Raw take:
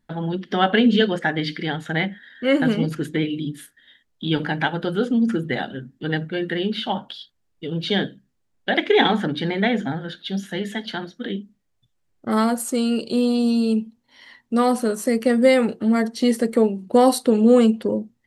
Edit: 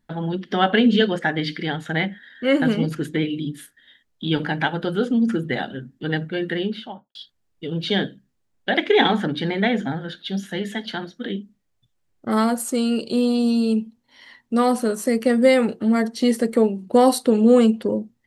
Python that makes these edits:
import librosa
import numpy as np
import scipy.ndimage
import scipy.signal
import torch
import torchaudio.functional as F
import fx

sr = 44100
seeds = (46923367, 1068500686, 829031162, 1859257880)

y = fx.studio_fade_out(x, sr, start_s=6.52, length_s=0.63)